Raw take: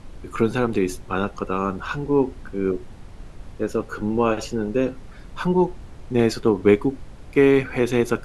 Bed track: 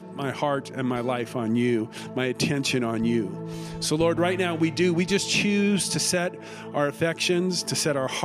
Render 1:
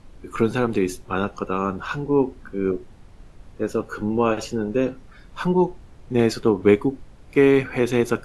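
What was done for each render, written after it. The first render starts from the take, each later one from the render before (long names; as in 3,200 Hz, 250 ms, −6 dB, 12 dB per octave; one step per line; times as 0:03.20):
noise reduction from a noise print 6 dB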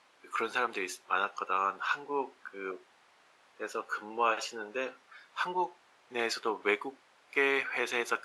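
high-pass filter 1,000 Hz 12 dB per octave
high-shelf EQ 6,500 Hz −10 dB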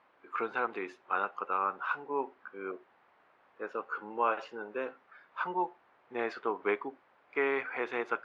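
low-pass filter 1,700 Hz 12 dB per octave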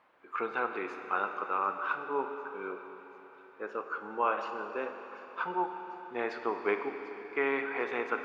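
delay with a high-pass on its return 744 ms, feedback 65%, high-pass 4,300 Hz, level −15 dB
four-comb reverb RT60 3.9 s, combs from 29 ms, DRR 6 dB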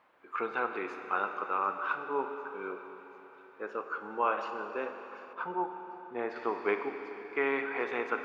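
0:05.33–0:06.36: high-shelf EQ 2,100 Hz −11.5 dB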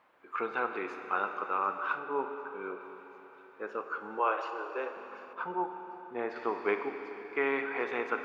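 0:01.99–0:02.81: high-frequency loss of the air 110 metres
0:04.19–0:04.97: Butterworth high-pass 280 Hz 72 dB per octave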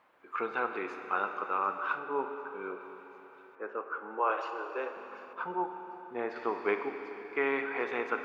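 0:03.55–0:04.30: three-way crossover with the lows and the highs turned down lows −24 dB, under 210 Hz, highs −21 dB, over 2,600 Hz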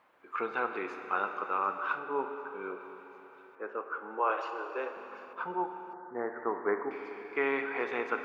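0:05.93–0:06.91: Butterworth low-pass 2,000 Hz 96 dB per octave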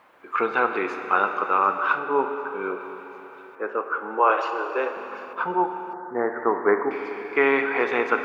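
level +10.5 dB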